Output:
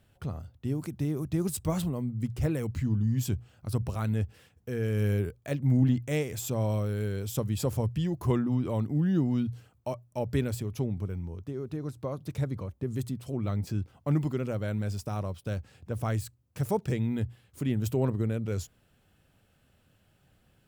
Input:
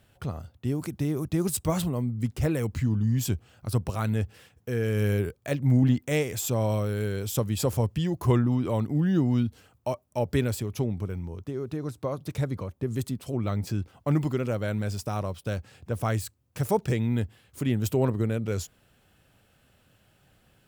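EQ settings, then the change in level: low shelf 290 Hz +5 dB; notches 60/120 Hz; -5.5 dB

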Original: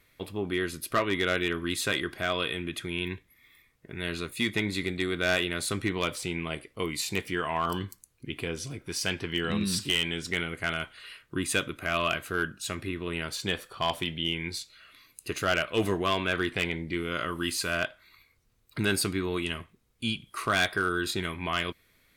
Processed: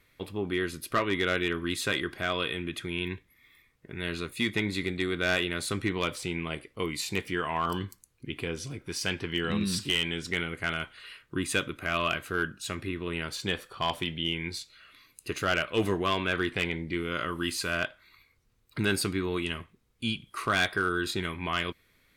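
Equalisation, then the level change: bell 660 Hz -3.5 dB 0.22 oct; high shelf 6200 Hz -4.5 dB; 0.0 dB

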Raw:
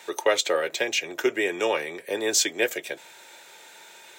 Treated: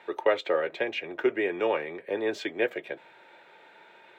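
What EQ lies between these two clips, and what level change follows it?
air absorption 490 m; 0.0 dB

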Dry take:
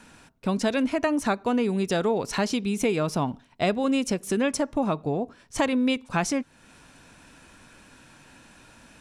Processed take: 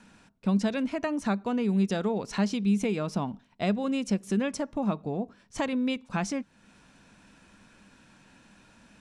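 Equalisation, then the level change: LPF 8300 Hz 12 dB/oct; bell 200 Hz +10.5 dB 0.26 oct; -6.0 dB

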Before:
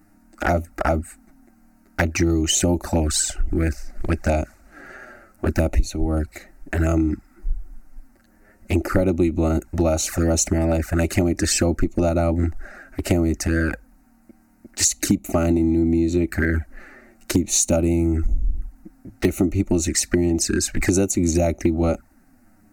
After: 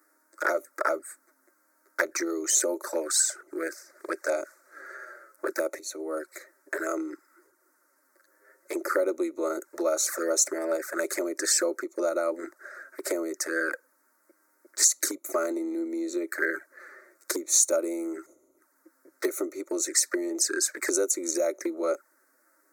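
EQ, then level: HPF 410 Hz 24 dB/oct; fixed phaser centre 760 Hz, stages 6; 0.0 dB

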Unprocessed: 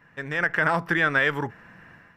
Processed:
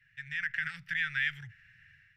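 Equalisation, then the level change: inverse Chebyshev band-stop 220–1100 Hz, stop band 40 dB; LPF 2100 Hz 6 dB/oct; low shelf 450 Hz -7.5 dB; 0.0 dB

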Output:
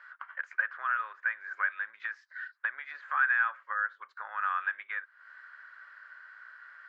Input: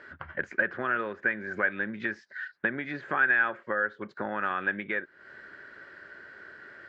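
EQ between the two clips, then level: ladder high-pass 1000 Hz, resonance 55%; +2.5 dB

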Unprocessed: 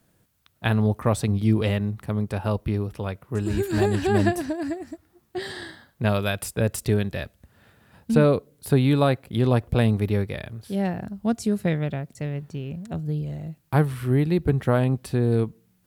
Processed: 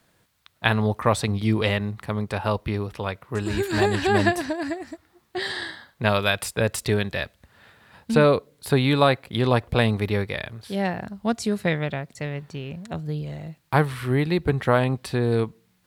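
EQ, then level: graphic EQ 500/1000/2000/4000/8000 Hz +3/+7/+7/+8/+3 dB; -2.5 dB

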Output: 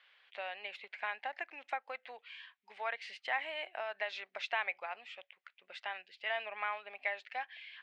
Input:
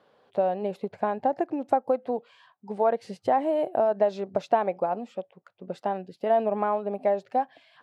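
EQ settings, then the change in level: ladder band-pass 2400 Hz, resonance 55%; bell 3100 Hz +5 dB 0.88 oct; +13.0 dB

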